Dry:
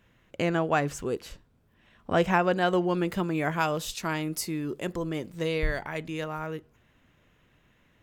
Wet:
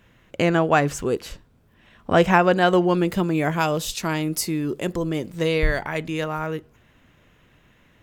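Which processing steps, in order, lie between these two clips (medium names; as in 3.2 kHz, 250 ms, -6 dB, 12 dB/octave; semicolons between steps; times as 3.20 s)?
2.94–5.41 s: dynamic bell 1.4 kHz, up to -4 dB, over -41 dBFS, Q 0.72; trim +7 dB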